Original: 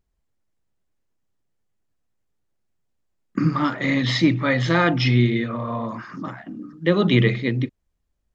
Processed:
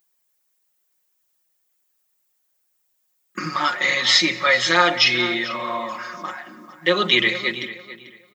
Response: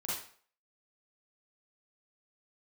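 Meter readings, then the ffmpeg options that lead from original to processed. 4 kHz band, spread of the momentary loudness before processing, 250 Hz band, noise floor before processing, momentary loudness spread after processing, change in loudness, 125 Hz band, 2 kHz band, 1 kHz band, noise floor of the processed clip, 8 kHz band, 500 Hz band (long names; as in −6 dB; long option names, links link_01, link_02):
+10.0 dB, 15 LU, −8.5 dB, −74 dBFS, 17 LU, +2.0 dB, −17.0 dB, +6.5 dB, +4.5 dB, −70 dBFS, can't be measured, −0.5 dB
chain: -filter_complex "[0:a]highpass=frequency=860:poles=1,aemphasis=mode=production:type=bsi,aecho=1:1:5.5:0.84,asplit=2[link_01][link_02];[link_02]adelay=442,lowpass=frequency=3800:poles=1,volume=-14dB,asplit=2[link_03][link_04];[link_04]adelay=442,lowpass=frequency=3800:poles=1,volume=0.24,asplit=2[link_05][link_06];[link_06]adelay=442,lowpass=frequency=3800:poles=1,volume=0.24[link_07];[link_01][link_03][link_05][link_07]amix=inputs=4:normalize=0,asplit=2[link_08][link_09];[1:a]atrim=start_sample=2205,adelay=137[link_10];[link_09][link_10]afir=irnorm=-1:irlink=0,volume=-24dB[link_11];[link_08][link_11]amix=inputs=2:normalize=0,volume=4dB"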